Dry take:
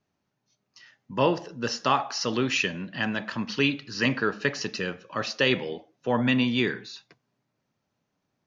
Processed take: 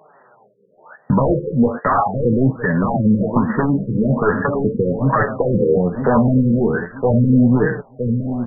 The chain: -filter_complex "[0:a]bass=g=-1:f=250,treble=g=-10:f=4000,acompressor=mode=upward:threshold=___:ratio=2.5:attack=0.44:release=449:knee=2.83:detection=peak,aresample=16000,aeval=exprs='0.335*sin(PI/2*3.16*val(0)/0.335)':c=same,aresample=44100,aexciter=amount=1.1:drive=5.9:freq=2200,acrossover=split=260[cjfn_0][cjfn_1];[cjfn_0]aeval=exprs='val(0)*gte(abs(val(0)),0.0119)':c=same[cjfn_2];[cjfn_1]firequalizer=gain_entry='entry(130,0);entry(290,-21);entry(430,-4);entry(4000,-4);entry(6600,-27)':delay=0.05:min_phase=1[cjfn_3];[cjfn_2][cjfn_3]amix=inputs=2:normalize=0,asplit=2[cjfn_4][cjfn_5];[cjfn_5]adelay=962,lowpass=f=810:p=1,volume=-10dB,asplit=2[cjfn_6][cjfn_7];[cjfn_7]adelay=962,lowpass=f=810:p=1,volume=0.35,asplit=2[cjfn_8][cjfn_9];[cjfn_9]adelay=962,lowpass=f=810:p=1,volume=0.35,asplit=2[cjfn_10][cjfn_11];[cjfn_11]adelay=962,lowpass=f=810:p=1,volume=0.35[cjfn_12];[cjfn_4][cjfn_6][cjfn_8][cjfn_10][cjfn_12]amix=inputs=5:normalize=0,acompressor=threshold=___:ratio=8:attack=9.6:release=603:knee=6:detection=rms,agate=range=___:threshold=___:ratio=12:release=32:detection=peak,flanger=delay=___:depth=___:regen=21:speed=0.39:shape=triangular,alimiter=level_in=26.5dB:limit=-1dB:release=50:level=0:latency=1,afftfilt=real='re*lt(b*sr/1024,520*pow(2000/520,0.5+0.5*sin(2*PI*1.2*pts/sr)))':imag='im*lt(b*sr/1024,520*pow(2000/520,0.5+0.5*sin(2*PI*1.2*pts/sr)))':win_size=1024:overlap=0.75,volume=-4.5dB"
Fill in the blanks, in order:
-45dB, -25dB, -9dB, -52dB, 6.2, 8.7